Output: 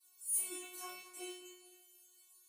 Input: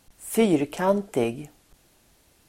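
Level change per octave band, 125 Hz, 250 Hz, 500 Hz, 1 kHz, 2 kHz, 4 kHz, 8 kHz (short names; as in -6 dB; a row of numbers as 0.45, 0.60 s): under -40 dB, -30.0 dB, -29.5 dB, -22.5 dB, -16.5 dB, -11.5 dB, +0.5 dB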